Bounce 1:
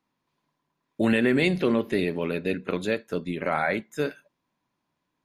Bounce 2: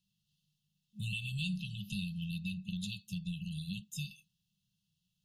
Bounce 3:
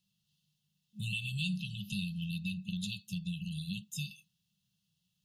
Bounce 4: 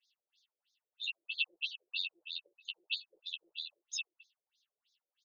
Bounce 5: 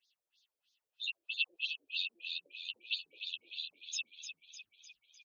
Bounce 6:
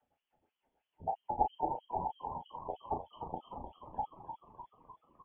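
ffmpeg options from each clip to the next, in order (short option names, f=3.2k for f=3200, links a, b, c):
-af "afftfilt=real='re*(1-between(b*sr/4096,210,2600))':imag='im*(1-between(b*sr/4096,210,2600))':win_size=4096:overlap=0.75,acompressor=threshold=-40dB:ratio=3,volume=2.5dB"
-af "lowshelf=f=60:g=-10,volume=2.5dB"
-af "aecho=1:1:12|51:0.562|0.158,afftfilt=real='re*between(b*sr/1024,430*pow(5000/430,0.5+0.5*sin(2*PI*3.1*pts/sr))/1.41,430*pow(5000/430,0.5+0.5*sin(2*PI*3.1*pts/sr))*1.41)':imag='im*between(b*sr/1024,430*pow(5000/430,0.5+0.5*sin(2*PI*3.1*pts/sr))/1.41,430*pow(5000/430,0.5+0.5*sin(2*PI*3.1*pts/sr))*1.41)':win_size=1024:overlap=0.75,volume=7.5dB"
-filter_complex "[0:a]asplit=8[a][b][c][d][e][f][g][h];[b]adelay=302,afreqshift=-59,volume=-8.5dB[i];[c]adelay=604,afreqshift=-118,volume=-13.5dB[j];[d]adelay=906,afreqshift=-177,volume=-18.6dB[k];[e]adelay=1208,afreqshift=-236,volume=-23.6dB[l];[f]adelay=1510,afreqshift=-295,volume=-28.6dB[m];[g]adelay=1812,afreqshift=-354,volume=-33.7dB[n];[h]adelay=2114,afreqshift=-413,volume=-38.7dB[o];[a][i][j][k][l][m][n][o]amix=inputs=8:normalize=0"
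-filter_complex "[0:a]lowpass=f=3k:t=q:w=0.5098,lowpass=f=3k:t=q:w=0.6013,lowpass=f=3k:t=q:w=0.9,lowpass=f=3k:t=q:w=2.563,afreqshift=-3500,asplit=2[a][b];[b]adelay=34,volume=-6.5dB[c];[a][c]amix=inputs=2:normalize=0,volume=5.5dB"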